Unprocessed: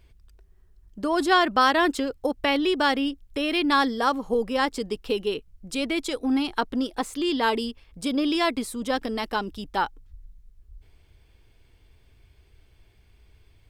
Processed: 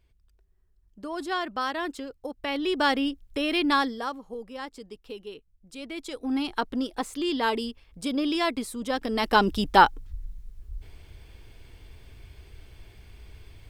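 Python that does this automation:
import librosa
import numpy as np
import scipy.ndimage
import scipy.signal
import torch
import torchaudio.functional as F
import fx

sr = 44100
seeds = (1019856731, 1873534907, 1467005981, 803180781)

y = fx.gain(x, sr, db=fx.line((2.35, -10.0), (2.83, -1.0), (3.71, -1.0), (4.26, -13.5), (5.72, -13.5), (6.45, -2.5), (8.98, -2.5), (9.44, 9.0)))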